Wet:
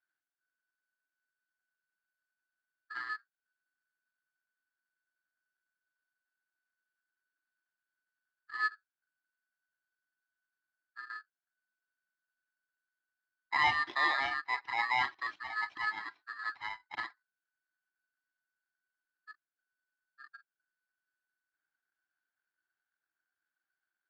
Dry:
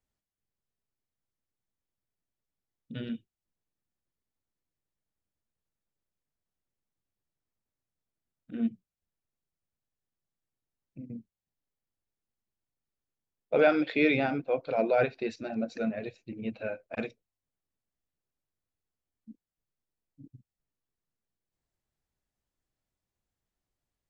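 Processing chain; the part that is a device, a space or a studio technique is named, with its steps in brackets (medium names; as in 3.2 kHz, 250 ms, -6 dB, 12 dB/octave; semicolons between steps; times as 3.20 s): ring modulator pedal into a guitar cabinet (polarity switched at an audio rate 1.5 kHz; cabinet simulation 100–4100 Hz, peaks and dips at 140 Hz -6 dB, 220 Hz -6 dB, 320 Hz +8 dB, 510 Hz -6 dB, 760 Hz +5 dB, 1.6 kHz +8 dB); trim -7 dB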